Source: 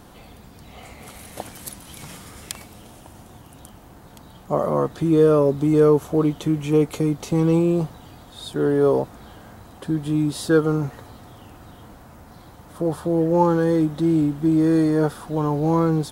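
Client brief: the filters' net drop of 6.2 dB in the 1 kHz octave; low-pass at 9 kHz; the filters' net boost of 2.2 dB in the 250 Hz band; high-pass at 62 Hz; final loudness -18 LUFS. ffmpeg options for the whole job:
-af "highpass=62,lowpass=9000,equalizer=f=250:t=o:g=4,equalizer=f=1000:t=o:g=-8,volume=1.19"

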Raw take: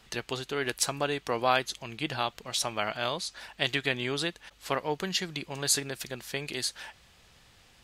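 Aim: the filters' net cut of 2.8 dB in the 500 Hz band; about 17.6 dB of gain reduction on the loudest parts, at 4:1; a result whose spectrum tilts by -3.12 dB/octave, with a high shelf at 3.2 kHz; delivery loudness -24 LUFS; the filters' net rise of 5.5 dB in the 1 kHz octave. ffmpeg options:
-af "equalizer=f=500:t=o:g=-6.5,equalizer=f=1000:t=o:g=8.5,highshelf=f=3200:g=5.5,acompressor=threshold=0.0126:ratio=4,volume=6.31"

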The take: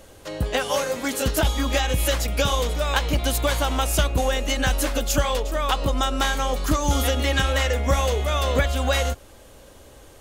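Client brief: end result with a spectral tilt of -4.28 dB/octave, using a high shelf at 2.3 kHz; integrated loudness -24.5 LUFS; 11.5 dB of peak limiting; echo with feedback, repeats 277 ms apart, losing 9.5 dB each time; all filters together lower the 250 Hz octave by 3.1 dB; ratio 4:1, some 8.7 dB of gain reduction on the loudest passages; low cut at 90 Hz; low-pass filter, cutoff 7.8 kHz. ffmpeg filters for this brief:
-af "highpass=90,lowpass=7800,equalizer=f=250:t=o:g=-3.5,highshelf=f=2300:g=-6,acompressor=threshold=0.0316:ratio=4,alimiter=level_in=1.78:limit=0.0631:level=0:latency=1,volume=0.562,aecho=1:1:277|554|831|1108:0.335|0.111|0.0365|0.012,volume=4.47"

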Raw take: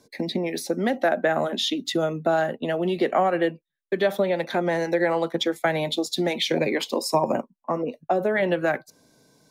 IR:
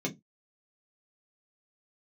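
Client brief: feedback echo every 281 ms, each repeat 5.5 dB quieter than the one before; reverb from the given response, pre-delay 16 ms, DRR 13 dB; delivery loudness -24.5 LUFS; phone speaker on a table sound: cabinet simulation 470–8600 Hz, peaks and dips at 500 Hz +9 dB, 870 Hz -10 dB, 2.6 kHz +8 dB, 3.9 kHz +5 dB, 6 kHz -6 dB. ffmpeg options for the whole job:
-filter_complex "[0:a]aecho=1:1:281|562|843|1124|1405|1686|1967:0.531|0.281|0.149|0.079|0.0419|0.0222|0.0118,asplit=2[s0][s1];[1:a]atrim=start_sample=2205,adelay=16[s2];[s1][s2]afir=irnorm=-1:irlink=0,volume=0.126[s3];[s0][s3]amix=inputs=2:normalize=0,highpass=f=470:w=0.5412,highpass=f=470:w=1.3066,equalizer=f=500:t=q:w=4:g=9,equalizer=f=870:t=q:w=4:g=-10,equalizer=f=2600:t=q:w=4:g=8,equalizer=f=3900:t=q:w=4:g=5,equalizer=f=6000:t=q:w=4:g=-6,lowpass=f=8600:w=0.5412,lowpass=f=8600:w=1.3066,volume=0.708"

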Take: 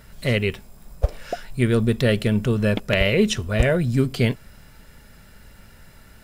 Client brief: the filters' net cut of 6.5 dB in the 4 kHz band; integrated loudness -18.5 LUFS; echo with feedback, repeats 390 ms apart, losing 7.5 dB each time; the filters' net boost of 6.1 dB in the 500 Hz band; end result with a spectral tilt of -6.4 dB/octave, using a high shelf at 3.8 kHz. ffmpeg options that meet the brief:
-af "equalizer=f=500:t=o:g=7.5,highshelf=f=3800:g=-4.5,equalizer=f=4000:t=o:g=-7.5,aecho=1:1:390|780|1170|1560|1950:0.422|0.177|0.0744|0.0312|0.0131,volume=1.06"

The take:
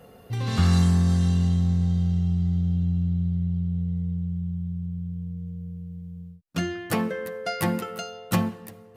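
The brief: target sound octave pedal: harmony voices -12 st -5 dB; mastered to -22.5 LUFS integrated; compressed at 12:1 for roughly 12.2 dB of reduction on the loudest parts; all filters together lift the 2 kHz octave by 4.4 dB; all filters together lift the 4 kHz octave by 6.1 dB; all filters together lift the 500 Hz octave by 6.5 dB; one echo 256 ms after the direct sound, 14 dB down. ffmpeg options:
-filter_complex "[0:a]equalizer=f=500:t=o:g=7.5,equalizer=f=2000:t=o:g=3.5,equalizer=f=4000:t=o:g=6.5,acompressor=threshold=0.0447:ratio=12,aecho=1:1:256:0.2,asplit=2[s0][s1];[s1]asetrate=22050,aresample=44100,atempo=2,volume=0.562[s2];[s0][s2]amix=inputs=2:normalize=0,volume=2.82"

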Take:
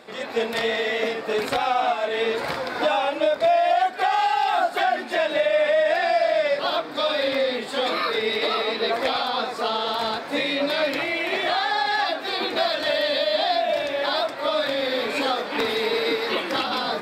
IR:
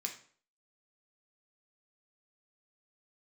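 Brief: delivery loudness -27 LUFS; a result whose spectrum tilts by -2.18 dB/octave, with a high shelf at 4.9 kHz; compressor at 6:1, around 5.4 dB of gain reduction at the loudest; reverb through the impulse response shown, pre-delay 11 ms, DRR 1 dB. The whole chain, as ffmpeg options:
-filter_complex "[0:a]highshelf=f=4900:g=4.5,acompressor=threshold=0.0794:ratio=6,asplit=2[s0][s1];[1:a]atrim=start_sample=2205,adelay=11[s2];[s1][s2]afir=irnorm=-1:irlink=0,volume=0.944[s3];[s0][s3]amix=inputs=2:normalize=0,volume=0.668"

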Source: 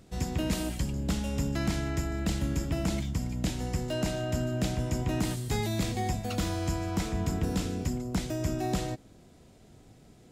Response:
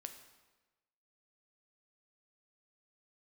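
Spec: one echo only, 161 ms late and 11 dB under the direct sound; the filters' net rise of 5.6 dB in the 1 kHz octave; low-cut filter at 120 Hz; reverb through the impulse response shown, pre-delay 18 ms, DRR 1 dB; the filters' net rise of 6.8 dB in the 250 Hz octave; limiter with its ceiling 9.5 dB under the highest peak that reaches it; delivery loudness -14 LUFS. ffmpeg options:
-filter_complex "[0:a]highpass=120,equalizer=f=250:t=o:g=9,equalizer=f=1000:t=o:g=7.5,alimiter=limit=0.0891:level=0:latency=1,aecho=1:1:161:0.282,asplit=2[s0][s1];[1:a]atrim=start_sample=2205,adelay=18[s2];[s1][s2]afir=irnorm=-1:irlink=0,volume=1.5[s3];[s0][s3]amix=inputs=2:normalize=0,volume=5.31"

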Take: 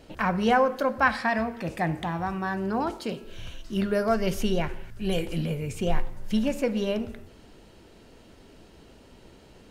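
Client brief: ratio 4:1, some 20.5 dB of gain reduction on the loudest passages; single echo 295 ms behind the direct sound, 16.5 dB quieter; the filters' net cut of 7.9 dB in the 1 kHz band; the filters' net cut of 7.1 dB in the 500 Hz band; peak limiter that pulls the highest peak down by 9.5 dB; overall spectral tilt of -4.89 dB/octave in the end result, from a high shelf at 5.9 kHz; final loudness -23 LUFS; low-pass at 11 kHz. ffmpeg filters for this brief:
-af "lowpass=11000,equalizer=f=500:t=o:g=-6.5,equalizer=f=1000:t=o:g=-8.5,highshelf=f=5900:g=8.5,acompressor=threshold=0.00708:ratio=4,alimiter=level_in=4.47:limit=0.0631:level=0:latency=1,volume=0.224,aecho=1:1:295:0.15,volume=17.8"

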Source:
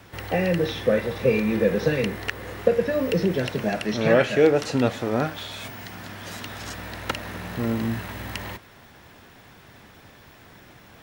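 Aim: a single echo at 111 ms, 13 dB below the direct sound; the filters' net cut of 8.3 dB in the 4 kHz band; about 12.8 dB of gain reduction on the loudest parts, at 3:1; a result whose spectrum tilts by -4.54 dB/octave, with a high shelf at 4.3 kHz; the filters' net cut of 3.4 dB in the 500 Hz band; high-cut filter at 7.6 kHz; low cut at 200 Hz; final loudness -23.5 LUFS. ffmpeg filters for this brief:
-af "highpass=200,lowpass=7600,equalizer=f=500:t=o:g=-3.5,equalizer=f=4000:t=o:g=-7,highshelf=f=4300:g=-8,acompressor=threshold=0.0224:ratio=3,aecho=1:1:111:0.224,volume=4.22"

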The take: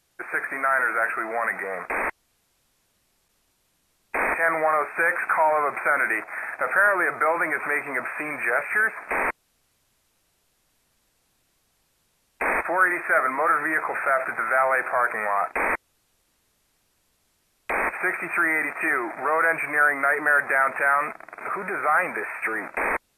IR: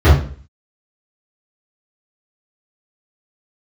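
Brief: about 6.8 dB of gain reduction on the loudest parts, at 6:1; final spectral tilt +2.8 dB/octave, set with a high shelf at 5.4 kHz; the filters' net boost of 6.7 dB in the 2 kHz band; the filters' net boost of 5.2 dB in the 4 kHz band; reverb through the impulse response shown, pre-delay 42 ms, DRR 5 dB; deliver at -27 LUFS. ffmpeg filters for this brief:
-filter_complex "[0:a]equalizer=f=2000:t=o:g=8.5,equalizer=f=4000:t=o:g=6.5,highshelf=f=5400:g=-8,acompressor=threshold=0.141:ratio=6,asplit=2[s0][s1];[1:a]atrim=start_sample=2205,adelay=42[s2];[s1][s2]afir=irnorm=-1:irlink=0,volume=0.0282[s3];[s0][s3]amix=inputs=2:normalize=0,volume=0.473"

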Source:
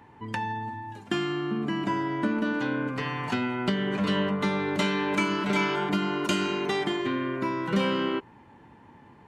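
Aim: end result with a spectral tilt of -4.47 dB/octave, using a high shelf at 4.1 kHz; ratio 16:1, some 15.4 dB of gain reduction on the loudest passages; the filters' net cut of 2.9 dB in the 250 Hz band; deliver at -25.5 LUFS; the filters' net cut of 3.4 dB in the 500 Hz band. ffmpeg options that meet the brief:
-af "equalizer=f=250:t=o:g=-3,equalizer=f=500:t=o:g=-3.5,highshelf=f=4100:g=8.5,acompressor=threshold=0.0141:ratio=16,volume=5.62"

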